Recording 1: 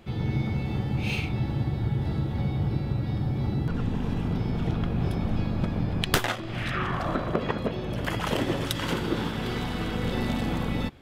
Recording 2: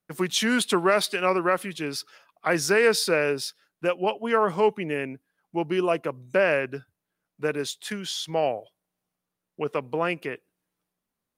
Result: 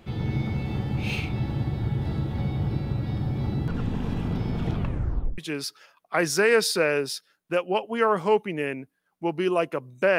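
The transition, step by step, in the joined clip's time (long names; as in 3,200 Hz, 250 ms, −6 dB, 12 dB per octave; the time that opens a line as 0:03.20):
recording 1
0:04.73: tape stop 0.65 s
0:05.38: continue with recording 2 from 0:01.70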